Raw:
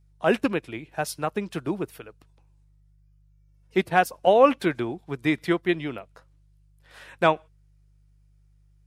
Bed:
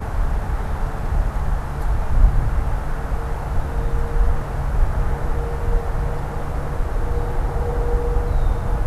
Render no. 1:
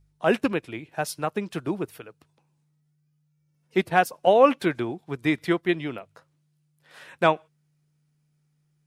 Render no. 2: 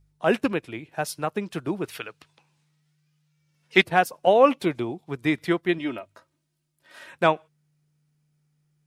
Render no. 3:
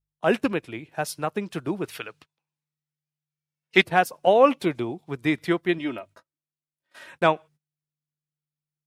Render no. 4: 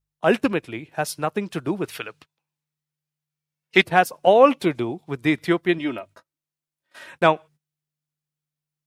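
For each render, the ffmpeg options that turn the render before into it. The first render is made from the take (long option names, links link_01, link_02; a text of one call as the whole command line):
ffmpeg -i in.wav -af "bandreject=frequency=50:width_type=h:width=4,bandreject=frequency=100:width_type=h:width=4" out.wav
ffmpeg -i in.wav -filter_complex "[0:a]asplit=3[link_01][link_02][link_03];[link_01]afade=type=out:start_time=1.83:duration=0.02[link_04];[link_02]equalizer=frequency=3000:width=0.35:gain=13.5,afade=type=in:start_time=1.83:duration=0.02,afade=type=out:start_time=3.82:duration=0.02[link_05];[link_03]afade=type=in:start_time=3.82:duration=0.02[link_06];[link_04][link_05][link_06]amix=inputs=3:normalize=0,asettb=1/sr,asplit=3[link_07][link_08][link_09];[link_07]atrim=end=4.484[link_10];[link_08]atrim=start=4.48:end=5.09,asetpts=PTS-STARTPTS,afade=type=in:duration=0.004:curve=qsin,afade=type=out:start_time=0.606:duration=0.004:curve=qsin,equalizer=frequency=1600:width_type=o:width=0.36:gain=-11[link_11];[link_09]atrim=start=5.086[link_12];[link_10][link_11]acrossfade=duration=0.004:curve1=hsin:curve2=qsin[link_13];[link_13][link_12]acrossfade=duration=0.004:curve1=qsin:curve2=hsin,asettb=1/sr,asplit=3[link_14][link_15][link_16];[link_14]atrim=end=5.784[link_17];[link_15]atrim=start=5.78:end=7.11,asetpts=PTS-STARTPTS,afade=type=in:duration=0.004:curve=qsin,afade=type=out:start_time=1.326:duration=0.004:curve=qsin,aecho=1:1:3.2:0.65,atrim=end_sample=58653[link_18];[link_16]atrim=start=7.106[link_19];[link_17][link_18]acrossfade=duration=0.004:curve1=hsin:curve2=qsin[link_20];[link_20][link_19]acrossfade=duration=0.004:curve1=qsin:curve2=hsin" out.wav
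ffmpeg -i in.wav -af "agate=range=-23dB:threshold=-49dB:ratio=16:detection=peak" out.wav
ffmpeg -i in.wav -af "volume=3dB,alimiter=limit=-1dB:level=0:latency=1" out.wav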